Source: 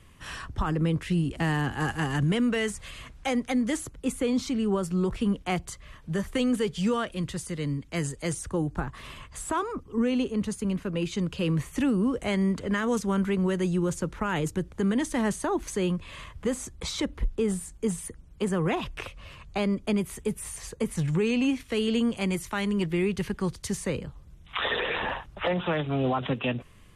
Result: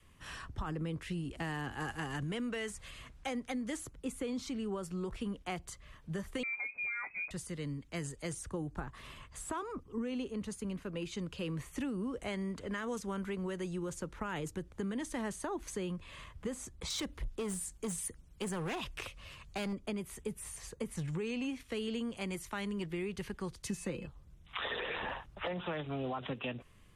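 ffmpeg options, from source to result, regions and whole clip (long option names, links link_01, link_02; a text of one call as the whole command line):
ffmpeg -i in.wav -filter_complex "[0:a]asettb=1/sr,asplit=3[link_01][link_02][link_03];[link_01]atrim=end=6.434[link_04];[link_02]atrim=start=6.43:end=7.31,asetpts=PTS-STARTPTS,afade=type=in:duration=0.004:curve=qsin,afade=type=out:start_time=0.876:duration=0.004:curve=qsin,asplit=2[link_05][link_06];[link_06]adelay=17,volume=-11.5dB[link_07];[link_05][link_07]amix=inputs=2:normalize=0,atrim=end_sample=38808,acompressor=threshold=-27dB:ratio=3:attack=3.2:release=140:knee=1:detection=peak,lowpass=frequency=2200:width_type=q:width=0.5098,lowpass=frequency=2200:width_type=q:width=0.6013,lowpass=frequency=2200:width_type=q:width=0.9,lowpass=frequency=2200:width_type=q:width=2.563,afreqshift=-2600[link_08];[link_03]atrim=start=7.306[link_09];[link_04][link_08]acrossfade=duration=0.004:curve1=hsin:curve2=qsin[link_10];[link_10][link_09]acrossfade=duration=0.004:curve1=qsin:curve2=hsin,asettb=1/sr,asplit=3[link_11][link_12][link_13];[link_11]atrim=end=16.904[link_14];[link_12]atrim=start=16.9:end=19.73,asetpts=PTS-STARTPTS,afade=type=in:duration=0.004:curve=qsin,afade=type=out:start_time=2.826:duration=0.004:curve=qsin,highshelf=frequency=2500:gain=8,asoftclip=type=hard:threshold=-23.5dB[link_15];[link_13]atrim=start=19.726[link_16];[link_14][link_15]acrossfade=duration=0.004:curve1=hsin:curve2=qsin[link_17];[link_17][link_16]acrossfade=duration=0.004:curve1=qsin:curve2=hsin,asettb=1/sr,asplit=3[link_18][link_19][link_20];[link_18]atrim=end=23.654[link_21];[link_19]atrim=start=23.65:end=24.07,asetpts=PTS-STARTPTS,afade=type=in:duration=0.004:curve=qsin,afade=type=out:start_time=0.416:duration=0.004:curve=qsin,equalizer=frequency=260:width_type=o:width=0.73:gain=7,aecho=1:1:5.8:0.48,atrim=end_sample=18522,aeval=exprs='val(0)+0.00501*sin(2*PI*2600*n/s)':channel_layout=same[link_22];[link_20]atrim=start=24.066[link_23];[link_21][link_22]acrossfade=duration=0.004:curve1=hsin:curve2=qsin[link_24];[link_24][link_23]acrossfade=duration=0.004:curve1=qsin:curve2=hsin,adynamicequalizer=threshold=0.0141:dfrequency=150:dqfactor=0.75:tfrequency=150:tqfactor=0.75:attack=5:release=100:ratio=0.375:range=2.5:mode=cutabove:tftype=bell,acompressor=threshold=-26dB:ratio=6,volume=-7.5dB" out.wav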